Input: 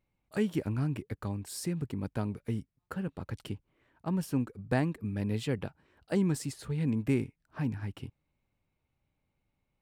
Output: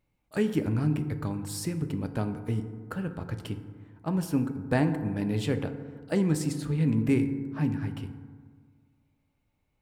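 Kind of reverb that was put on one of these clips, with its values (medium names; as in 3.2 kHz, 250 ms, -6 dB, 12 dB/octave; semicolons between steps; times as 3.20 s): FDN reverb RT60 1.7 s, low-frequency decay 1.1×, high-frequency decay 0.35×, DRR 7.5 dB; trim +3 dB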